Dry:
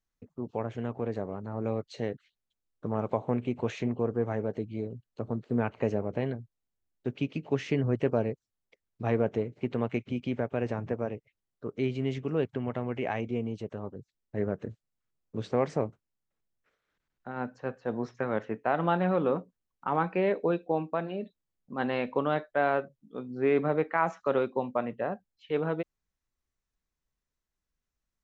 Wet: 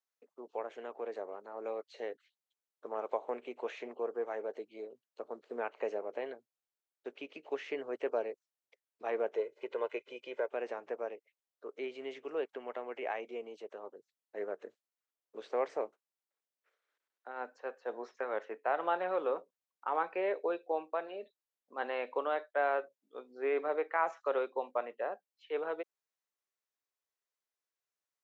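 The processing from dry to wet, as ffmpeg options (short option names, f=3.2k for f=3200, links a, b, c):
-filter_complex "[0:a]asettb=1/sr,asplit=3[a][b][c];[a]atrim=end=9.354[d];[b]atrim=start=9.35:end=10.48,asetpts=PTS-STARTPTS,afade=t=in:d=0.004:c=qsin,afade=t=out:st=1.126:d=0.004:c=qsin,aecho=1:1:2:0.65,atrim=end_sample=49833[e];[c]atrim=start=10.476[f];[d][e]acrossfade=d=0.004:c1=hsin:c2=qsin[g];[g][f]acrossfade=d=0.004:c1=qsin:c2=hsin,highpass=f=410:w=0.5412,highpass=f=410:w=1.3066,acrossover=split=3300[h][i];[i]acompressor=threshold=-57dB:ratio=4:attack=1:release=60[j];[h][j]amix=inputs=2:normalize=0,volume=-4dB"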